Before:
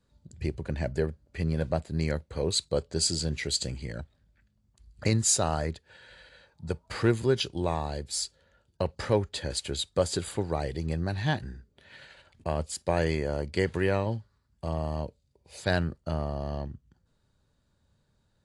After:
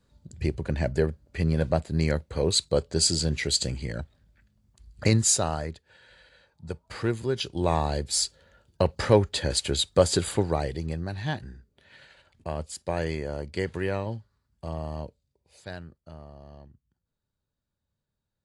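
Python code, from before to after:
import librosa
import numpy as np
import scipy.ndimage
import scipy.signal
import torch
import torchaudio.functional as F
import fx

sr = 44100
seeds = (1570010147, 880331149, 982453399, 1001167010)

y = fx.gain(x, sr, db=fx.line((5.15, 4.0), (5.7, -3.0), (7.32, -3.0), (7.76, 6.0), (10.36, 6.0), (11.04, -2.5), (15.06, -2.5), (15.81, -14.0)))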